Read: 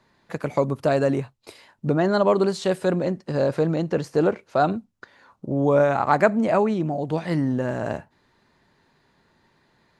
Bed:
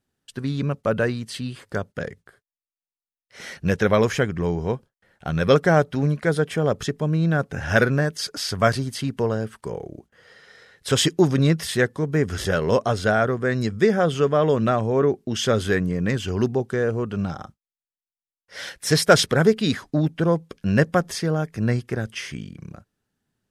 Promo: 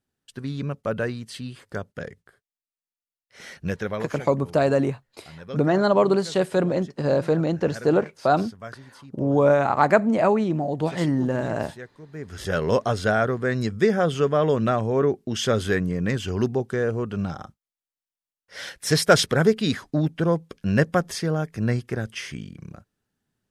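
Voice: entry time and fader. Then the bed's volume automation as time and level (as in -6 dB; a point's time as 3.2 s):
3.70 s, +0.5 dB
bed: 3.62 s -4.5 dB
4.37 s -20 dB
12.06 s -20 dB
12.57 s -1.5 dB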